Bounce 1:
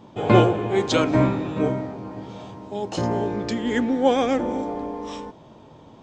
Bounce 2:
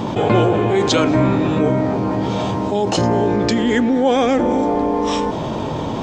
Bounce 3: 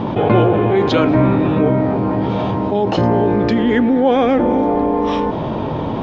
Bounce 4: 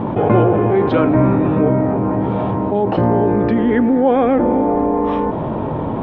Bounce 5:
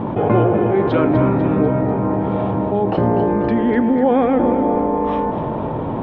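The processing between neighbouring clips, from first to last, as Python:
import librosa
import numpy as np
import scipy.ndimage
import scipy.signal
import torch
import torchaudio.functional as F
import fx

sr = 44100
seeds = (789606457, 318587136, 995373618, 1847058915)

y1 = fx.env_flatten(x, sr, amount_pct=70)
y1 = y1 * librosa.db_to_amplitude(-1.0)
y2 = fx.air_absorb(y1, sr, metres=280.0)
y2 = y2 * librosa.db_to_amplitude(2.5)
y3 = scipy.signal.sosfilt(scipy.signal.butter(2, 1800.0, 'lowpass', fs=sr, output='sos'), y2)
y4 = fx.echo_feedback(y3, sr, ms=247, feedback_pct=53, wet_db=-10.0)
y4 = y4 * librosa.db_to_amplitude(-2.0)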